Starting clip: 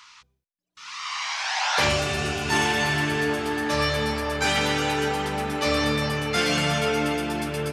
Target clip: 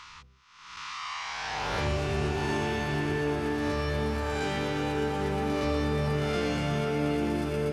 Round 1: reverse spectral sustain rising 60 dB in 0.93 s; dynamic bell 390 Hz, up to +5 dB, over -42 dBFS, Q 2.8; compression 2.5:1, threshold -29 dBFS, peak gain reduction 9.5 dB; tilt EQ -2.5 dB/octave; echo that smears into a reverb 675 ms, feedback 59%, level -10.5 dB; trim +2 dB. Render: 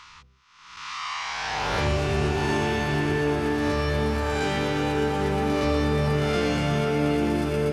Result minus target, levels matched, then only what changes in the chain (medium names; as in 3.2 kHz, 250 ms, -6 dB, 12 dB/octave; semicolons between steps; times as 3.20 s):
compression: peak gain reduction -5 dB
change: compression 2.5:1, threshold -37 dBFS, peak gain reduction 14.5 dB